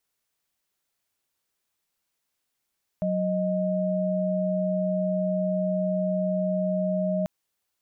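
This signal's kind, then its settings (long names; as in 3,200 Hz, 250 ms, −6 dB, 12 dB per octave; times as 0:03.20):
held notes F#3/D#5 sine, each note −25.5 dBFS 4.24 s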